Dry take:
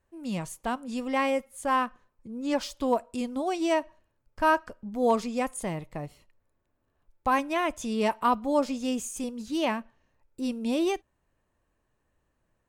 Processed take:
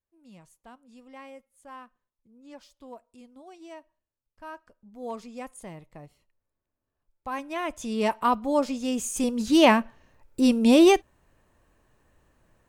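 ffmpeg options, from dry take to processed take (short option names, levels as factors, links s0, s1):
-af "volume=3.35,afade=t=in:st=4.5:d=0.97:silence=0.334965,afade=t=in:st=7.29:d=0.77:silence=0.298538,afade=t=in:st=8.92:d=0.58:silence=0.334965"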